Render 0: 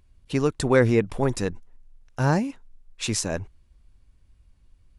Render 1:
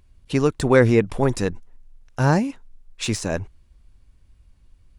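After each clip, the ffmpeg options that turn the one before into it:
-af "deesser=0.55,volume=3.5dB"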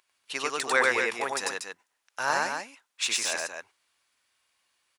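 -filter_complex "[0:a]highpass=1.1k,asplit=2[a][b];[b]aecho=0:1:96.21|239.1:0.891|0.501[c];[a][c]amix=inputs=2:normalize=0"

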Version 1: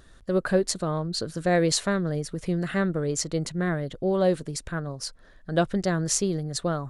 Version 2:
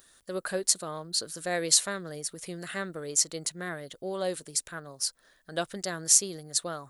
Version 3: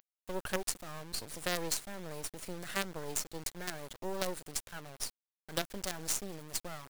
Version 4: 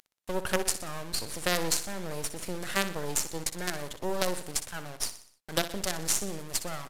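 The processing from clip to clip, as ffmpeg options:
-af "aemphasis=mode=production:type=riaa,volume=-6dB"
-filter_complex "[0:a]acrossover=split=360[a][b];[b]acompressor=threshold=-33dB:ratio=4[c];[a][c]amix=inputs=2:normalize=0,acrusher=bits=5:dc=4:mix=0:aa=0.000001"
-af "aecho=1:1:61|122|183|244|305:0.251|0.123|0.0603|0.0296|0.0145,volume=6.5dB" -ar 32000 -c:a libvorbis -b:a 128k

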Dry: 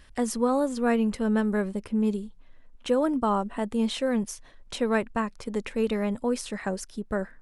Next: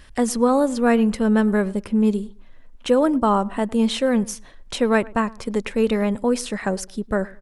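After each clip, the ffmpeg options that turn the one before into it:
-filter_complex "[0:a]asplit=2[a][b];[b]adelay=106,lowpass=f=1.5k:p=1,volume=-21.5dB,asplit=2[c][d];[d]adelay=106,lowpass=f=1.5k:p=1,volume=0.29[e];[a][c][e]amix=inputs=3:normalize=0,volume=6.5dB"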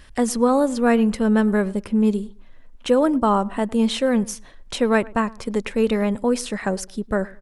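-af anull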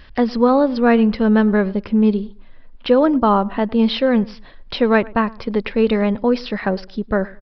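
-af "aresample=11025,aresample=44100,volume=3.5dB"

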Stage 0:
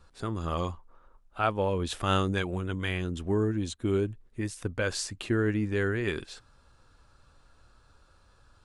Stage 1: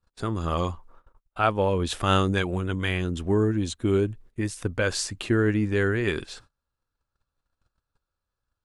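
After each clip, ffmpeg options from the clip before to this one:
-af "agate=range=-29dB:threshold=-53dB:ratio=16:detection=peak,volume=4.5dB"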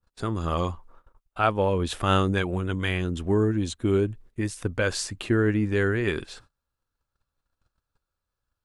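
-af "adynamicequalizer=threshold=0.00562:dfrequency=5800:dqfactor=0.75:tfrequency=5800:tqfactor=0.75:attack=5:release=100:ratio=0.375:range=2.5:mode=cutabove:tftype=bell"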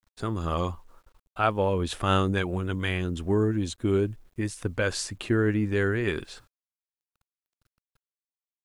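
-af "acrusher=bits=10:mix=0:aa=0.000001,volume=-1.5dB"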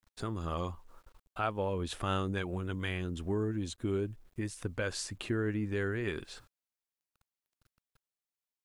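-af "acompressor=threshold=-45dB:ratio=1.5"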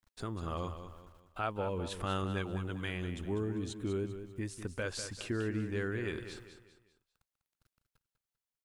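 -af "aecho=1:1:197|394|591|788:0.316|0.12|0.0457|0.0174,volume=-2.5dB"

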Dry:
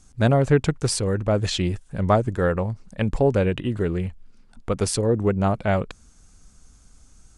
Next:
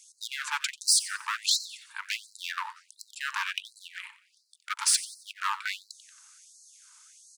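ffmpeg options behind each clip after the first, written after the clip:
-filter_complex "[0:a]asoftclip=type=hard:threshold=-21dB,asplit=5[a][b][c][d][e];[b]adelay=91,afreqshift=76,volume=-16dB[f];[c]adelay=182,afreqshift=152,volume=-24dB[g];[d]adelay=273,afreqshift=228,volume=-31.9dB[h];[e]adelay=364,afreqshift=304,volume=-39.9dB[i];[a][f][g][h][i]amix=inputs=5:normalize=0,afftfilt=real='re*gte(b*sr/1024,840*pow(4000/840,0.5+0.5*sin(2*PI*1.4*pts/sr)))':imag='im*gte(b*sr/1024,840*pow(4000/840,0.5+0.5*sin(2*PI*1.4*pts/sr)))':win_size=1024:overlap=0.75,volume=5.5dB"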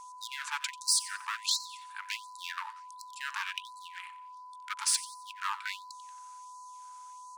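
-af "aeval=exprs='val(0)+0.00891*sin(2*PI*1000*n/s)':c=same,volume=-4.5dB"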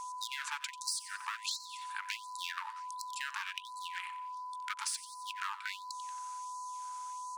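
-af "acompressor=threshold=-42dB:ratio=5,volume=5.5dB"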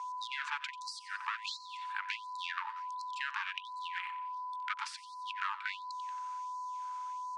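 -af "highpass=650,lowpass=3.1k,volume=3dB"

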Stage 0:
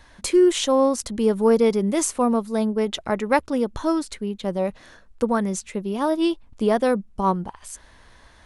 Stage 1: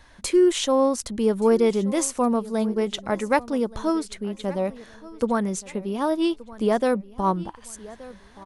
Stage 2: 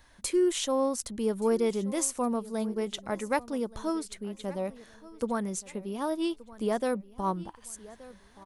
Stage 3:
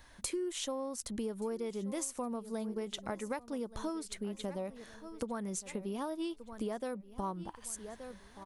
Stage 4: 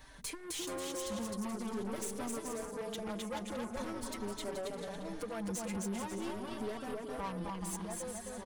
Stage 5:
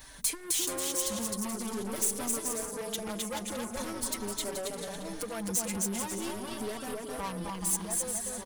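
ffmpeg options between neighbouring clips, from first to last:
-af "aecho=1:1:1175|2350|3525:0.106|0.036|0.0122,volume=-1.5dB"
-af "highshelf=f=9.2k:g=11,volume=-7.5dB"
-af "acompressor=threshold=-35dB:ratio=10,volume=1dB"
-filter_complex "[0:a]aecho=1:1:260|429|538.8|610.3|656.7:0.631|0.398|0.251|0.158|0.1,aeval=exprs='(tanh(100*val(0)+0.3)-tanh(0.3))/100':c=same,asplit=2[a][b];[b]adelay=4.7,afreqshift=0.44[c];[a][c]amix=inputs=2:normalize=1,volume=7dB"
-af "crystalizer=i=2.5:c=0,volume=2.5dB"

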